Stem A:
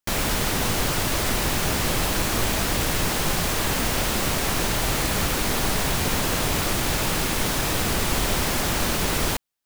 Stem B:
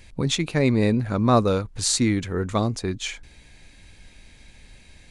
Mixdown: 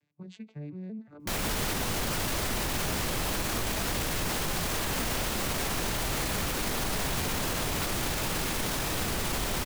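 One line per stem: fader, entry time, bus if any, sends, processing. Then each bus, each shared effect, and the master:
0.0 dB, 1.20 s, no send, dry
-16.5 dB, 0.00 s, no send, arpeggiated vocoder major triad, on D3, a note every 0.178 s; limiter -17 dBFS, peak gain reduction 6 dB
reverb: off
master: limiter -21 dBFS, peak gain reduction 10.5 dB

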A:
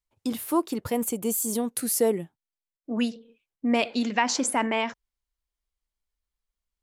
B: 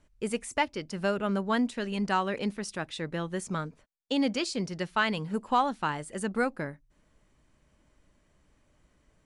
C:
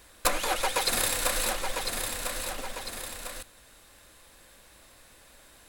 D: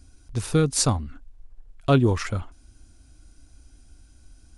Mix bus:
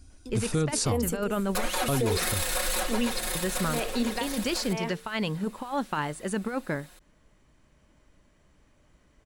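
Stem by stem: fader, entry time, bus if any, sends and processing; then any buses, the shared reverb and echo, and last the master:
0.0 dB, 0.00 s, no send, bell 410 Hz +7.5 dB 0.58 oct; notches 50/100/150/200/250/300/350/400/450 Hz; dB-linear tremolo 1 Hz, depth 25 dB
+2.0 dB, 0.10 s, muted 1.66–3.35, no send, bell 8600 Hz -4 dB 0.27 oct; negative-ratio compressor -29 dBFS, ratio -0.5
-2.0 dB, 1.30 s, no send, comb 5.5 ms, depth 95%
-0.5 dB, 0.00 s, no send, dry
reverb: off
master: limiter -17.5 dBFS, peak gain reduction 12 dB

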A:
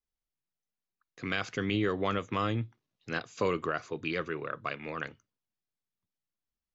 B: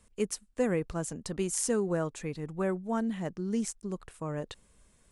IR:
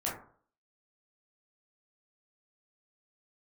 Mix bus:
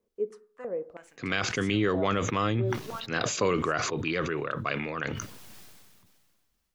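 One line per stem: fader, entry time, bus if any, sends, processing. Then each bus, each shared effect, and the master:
+3.0 dB, 0.00 s, no send, sustainer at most 29 dB/s
+1.0 dB, 0.00 s, send -16 dB, stepped band-pass 3.1 Hz 410–2900 Hz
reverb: on, RT60 0.50 s, pre-delay 13 ms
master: dry

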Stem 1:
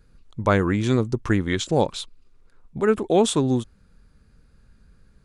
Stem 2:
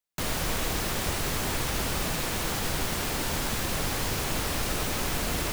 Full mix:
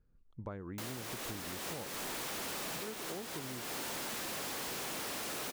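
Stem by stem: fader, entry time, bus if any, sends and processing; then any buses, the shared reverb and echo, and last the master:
-15.0 dB, 0.00 s, no send, LPF 1100 Hz 6 dB/oct
+1.5 dB, 0.60 s, no send, HPF 240 Hz 12 dB/oct; hard clip -35 dBFS, distortion -7 dB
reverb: off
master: compressor 10:1, threshold -39 dBFS, peak gain reduction 12.5 dB

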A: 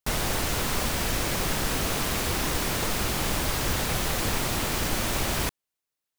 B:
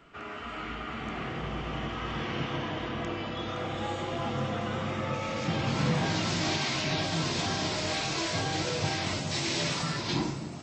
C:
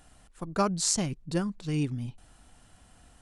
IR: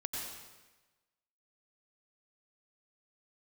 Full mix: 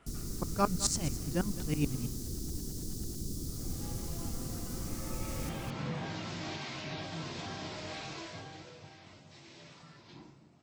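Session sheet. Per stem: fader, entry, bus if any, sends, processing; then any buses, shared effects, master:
-9.0 dB, 0.00 s, no send, echo send -6 dB, inverse Chebyshev band-stop 920–2000 Hz, stop band 70 dB; high shelf 6100 Hz -7 dB
1.96 s -5 dB -> 2.3 s -17.5 dB -> 4.71 s -17.5 dB -> 5.44 s -10 dB -> 8.1 s -10 dB -> 8.89 s -22.5 dB, 0.00 s, no send, no echo send, high shelf 5500 Hz -7 dB; auto duck -17 dB, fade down 0.30 s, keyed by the third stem
+2.5 dB, 0.00 s, no send, echo send -15.5 dB, dB-ramp tremolo swelling 9.2 Hz, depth 20 dB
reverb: off
echo: echo 0.211 s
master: dry

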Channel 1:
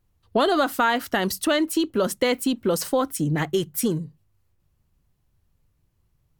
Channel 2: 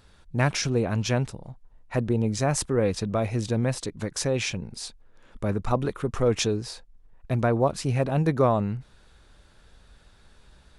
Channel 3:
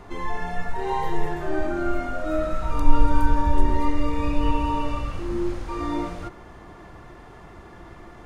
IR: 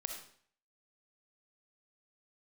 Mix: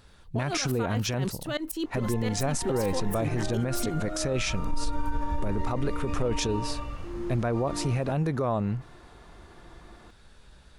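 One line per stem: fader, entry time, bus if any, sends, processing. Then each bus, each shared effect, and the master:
+0.5 dB, 0.00 s, no send, limiter -20.5 dBFS, peak gain reduction 10.5 dB; tremolo saw up 7 Hz, depth 95%
+1.0 dB, 0.00 s, no send, dry
-7.5 dB, 1.85 s, no send, short-mantissa float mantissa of 8-bit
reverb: off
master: limiter -18.5 dBFS, peak gain reduction 11 dB

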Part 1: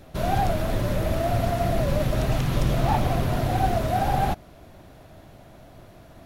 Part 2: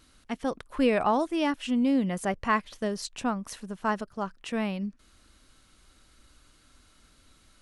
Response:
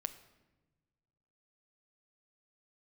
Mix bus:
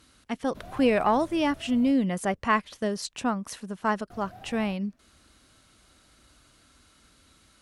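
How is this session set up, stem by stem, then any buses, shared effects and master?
-17.5 dB, 0.40 s, muted 1.92–4.1, no send, auto duck -7 dB, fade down 1.85 s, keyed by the second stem
+1.5 dB, 0.00 s, no send, HPF 54 Hz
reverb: off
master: added harmonics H 2 -21 dB, 5 -42 dB, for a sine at -10.5 dBFS

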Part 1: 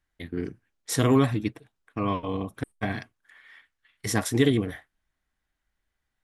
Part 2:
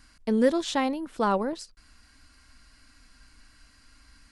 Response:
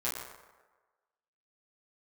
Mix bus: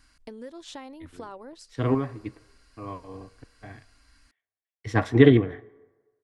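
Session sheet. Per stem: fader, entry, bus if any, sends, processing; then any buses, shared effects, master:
-1.5 dB, 0.80 s, send -23 dB, LPF 2100 Hz 12 dB/oct; random-step tremolo, depth 70%; three-band expander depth 100%
-4.0 dB, 0.00 s, no send, compressor 6:1, threshold -34 dBFS, peak gain reduction 16.5 dB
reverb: on, RT60 1.3 s, pre-delay 7 ms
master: bell 200 Hz -10.5 dB 0.25 oct

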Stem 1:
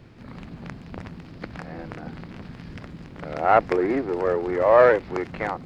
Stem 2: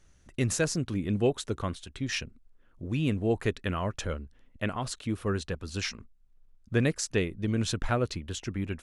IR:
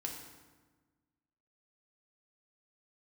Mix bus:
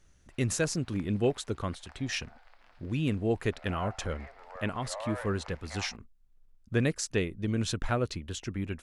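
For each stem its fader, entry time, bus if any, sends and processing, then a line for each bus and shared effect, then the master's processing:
-8.5 dB, 0.30 s, send -12.5 dB, steep high-pass 620 Hz 36 dB/oct; limiter -15.5 dBFS, peak gain reduction 8.5 dB; auto duck -10 dB, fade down 1.80 s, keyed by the second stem
-1.5 dB, 0.00 s, no send, dry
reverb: on, RT60 1.3 s, pre-delay 3 ms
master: dry

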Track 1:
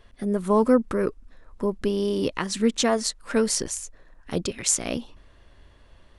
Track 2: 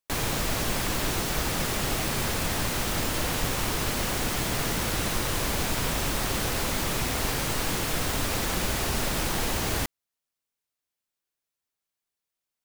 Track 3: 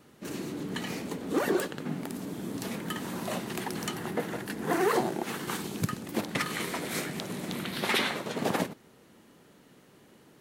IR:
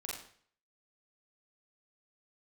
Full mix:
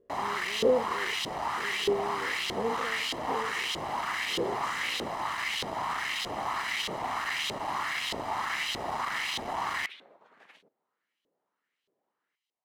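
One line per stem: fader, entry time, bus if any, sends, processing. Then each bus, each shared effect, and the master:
-14.0 dB, 0.00 s, no send, spectral dilation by 0.12 s; resonant low shelf 590 Hz +9 dB, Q 3; notch 430 Hz, Q 14
-2.0 dB, 0.00 s, no send, minimum comb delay 1 ms; sine folder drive 9 dB, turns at -15 dBFS
-16.0 dB, 1.95 s, no send, dry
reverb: off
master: LFO band-pass saw up 1.6 Hz 440–3500 Hz

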